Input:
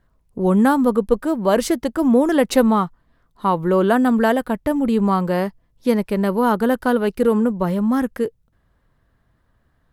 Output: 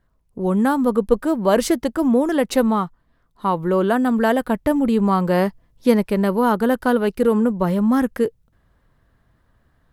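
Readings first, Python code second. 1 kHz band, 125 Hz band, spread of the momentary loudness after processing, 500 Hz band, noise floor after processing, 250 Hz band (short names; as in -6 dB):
-1.0 dB, -0.5 dB, 5 LU, -0.5 dB, -64 dBFS, -0.5 dB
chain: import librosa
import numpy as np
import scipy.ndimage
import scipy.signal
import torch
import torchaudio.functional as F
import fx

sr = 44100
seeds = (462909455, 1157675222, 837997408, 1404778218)

y = fx.rider(x, sr, range_db=5, speed_s=0.5)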